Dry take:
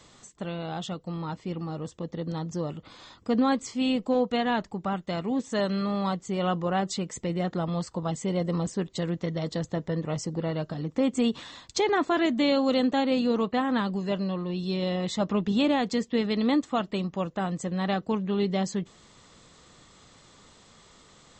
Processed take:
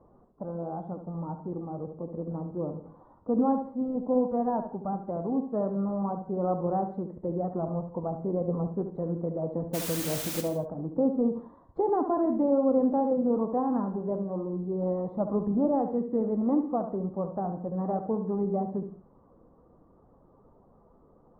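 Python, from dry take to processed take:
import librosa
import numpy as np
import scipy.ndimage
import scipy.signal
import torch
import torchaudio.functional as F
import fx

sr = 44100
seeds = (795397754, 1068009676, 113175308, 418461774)

y = fx.spec_quant(x, sr, step_db=15)
y = scipy.signal.sosfilt(scipy.signal.cheby2(4, 50, 2400.0, 'lowpass', fs=sr, output='sos'), y)
y = fx.peak_eq(y, sr, hz=130.0, db=-4.0, octaves=1.9)
y = fx.quant_dither(y, sr, seeds[0], bits=6, dither='triangular', at=(9.73, 10.4), fade=0.02)
y = y + 10.0 ** (-9.5 / 20.0) * np.pad(y, (int(71 * sr / 1000.0), 0))[:len(y)]
y = fx.rev_gated(y, sr, seeds[1], gate_ms=190, shape='flat', drr_db=11.5)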